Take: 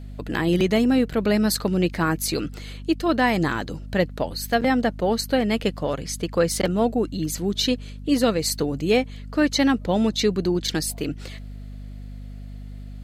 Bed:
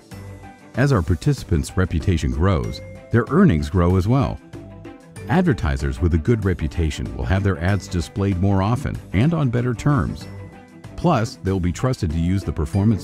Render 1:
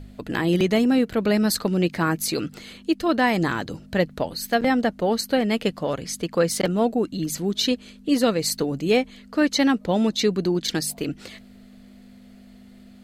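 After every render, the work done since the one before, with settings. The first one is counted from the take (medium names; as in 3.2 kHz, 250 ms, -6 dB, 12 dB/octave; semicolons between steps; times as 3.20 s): de-hum 50 Hz, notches 3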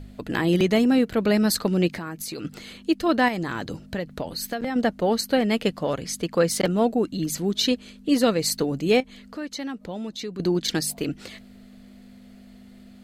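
1.96–2.45 s: compression 5:1, threshold -30 dBFS; 3.28–4.76 s: compression, threshold -24 dBFS; 9.00–10.40 s: compression 2:1, threshold -39 dBFS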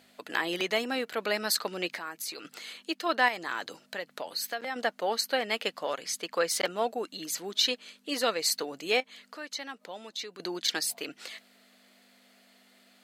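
dynamic bell 10 kHz, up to -4 dB, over -45 dBFS, Q 0.72; Bessel high-pass 870 Hz, order 2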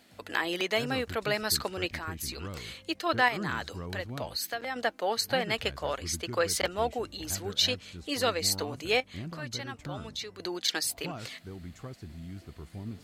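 add bed -22.5 dB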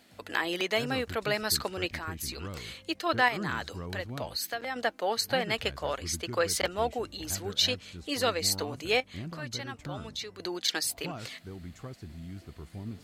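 no audible change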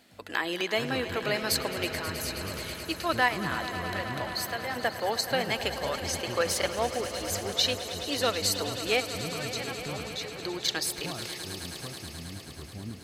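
echo with a slow build-up 107 ms, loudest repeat 5, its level -14.5 dB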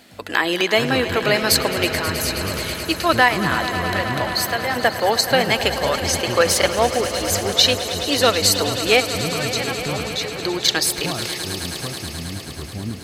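trim +11 dB; peak limiter -1 dBFS, peak gain reduction 2.5 dB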